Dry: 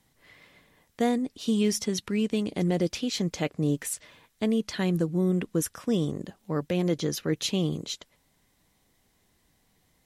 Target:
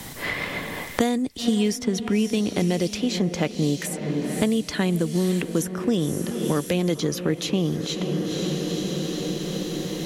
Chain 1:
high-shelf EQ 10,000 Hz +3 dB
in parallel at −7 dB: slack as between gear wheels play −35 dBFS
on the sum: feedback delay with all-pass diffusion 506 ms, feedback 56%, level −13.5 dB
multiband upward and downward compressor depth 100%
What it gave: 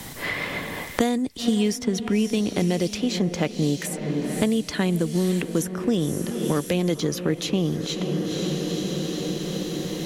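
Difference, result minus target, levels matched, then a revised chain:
slack as between gear wheels: distortion +7 dB
high-shelf EQ 10,000 Hz +3 dB
in parallel at −7 dB: slack as between gear wheels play −42.5 dBFS
on the sum: feedback delay with all-pass diffusion 506 ms, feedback 56%, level −13.5 dB
multiband upward and downward compressor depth 100%

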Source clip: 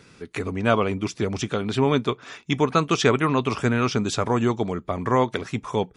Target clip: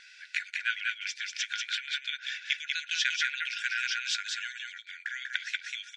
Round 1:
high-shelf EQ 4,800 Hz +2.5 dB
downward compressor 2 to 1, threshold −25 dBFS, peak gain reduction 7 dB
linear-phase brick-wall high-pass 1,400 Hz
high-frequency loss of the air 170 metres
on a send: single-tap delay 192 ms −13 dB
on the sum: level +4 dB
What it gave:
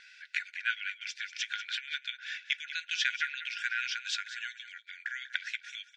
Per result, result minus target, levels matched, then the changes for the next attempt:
echo-to-direct −9.5 dB; 8,000 Hz band −3.0 dB
change: single-tap delay 192 ms −3.5 dB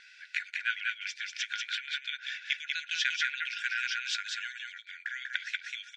8,000 Hz band −3.0 dB
change: high-shelf EQ 4,800 Hz +10.5 dB

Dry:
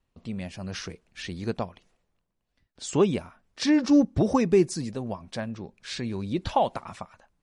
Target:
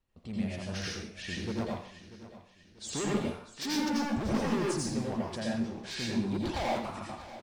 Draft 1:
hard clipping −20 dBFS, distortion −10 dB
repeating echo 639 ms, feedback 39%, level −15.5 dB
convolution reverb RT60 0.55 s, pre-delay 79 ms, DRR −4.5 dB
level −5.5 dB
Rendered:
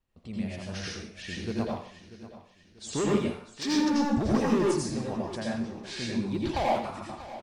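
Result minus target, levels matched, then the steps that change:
hard clipping: distortion −6 dB
change: hard clipping −27.5 dBFS, distortion −3 dB

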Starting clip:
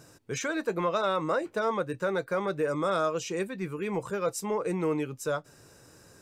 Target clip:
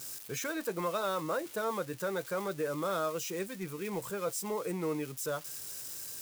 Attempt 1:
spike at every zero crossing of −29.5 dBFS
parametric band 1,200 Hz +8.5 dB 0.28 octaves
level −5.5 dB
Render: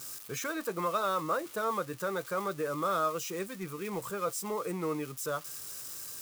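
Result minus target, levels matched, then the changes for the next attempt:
1,000 Hz band +3.5 dB
remove: parametric band 1,200 Hz +8.5 dB 0.28 octaves

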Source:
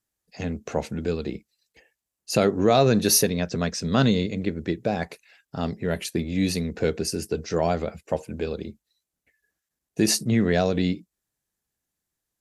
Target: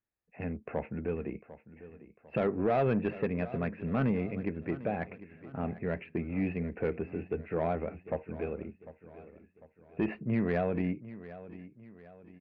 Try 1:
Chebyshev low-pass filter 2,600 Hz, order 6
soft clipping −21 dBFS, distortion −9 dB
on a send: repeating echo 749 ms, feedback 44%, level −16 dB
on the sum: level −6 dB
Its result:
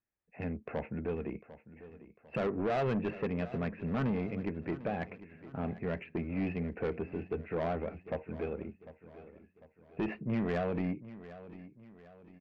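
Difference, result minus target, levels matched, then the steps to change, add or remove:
soft clipping: distortion +7 dB
change: soft clipping −14.5 dBFS, distortion −15 dB

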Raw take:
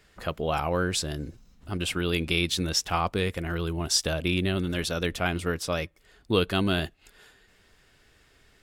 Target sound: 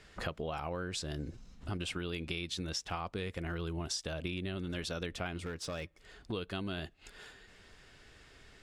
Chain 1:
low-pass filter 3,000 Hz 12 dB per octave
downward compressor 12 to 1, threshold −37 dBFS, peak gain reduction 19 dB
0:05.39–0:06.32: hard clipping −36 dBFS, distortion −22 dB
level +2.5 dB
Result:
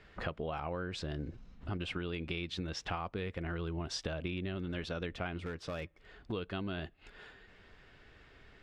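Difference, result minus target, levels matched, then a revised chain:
8,000 Hz band −7.5 dB
low-pass filter 8,200 Hz 12 dB per octave
downward compressor 12 to 1, threshold −37 dBFS, peak gain reduction 19.5 dB
0:05.39–0:06.32: hard clipping −36 dBFS, distortion −22 dB
level +2.5 dB

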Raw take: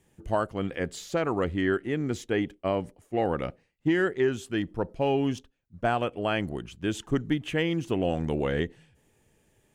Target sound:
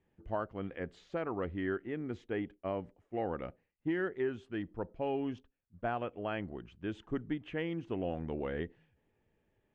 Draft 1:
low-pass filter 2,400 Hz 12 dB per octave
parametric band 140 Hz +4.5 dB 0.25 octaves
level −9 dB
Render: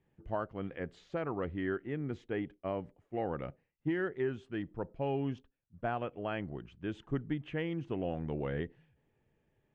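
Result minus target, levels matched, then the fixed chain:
125 Hz band +3.5 dB
low-pass filter 2,400 Hz 12 dB per octave
parametric band 140 Hz −6 dB 0.25 octaves
level −9 dB

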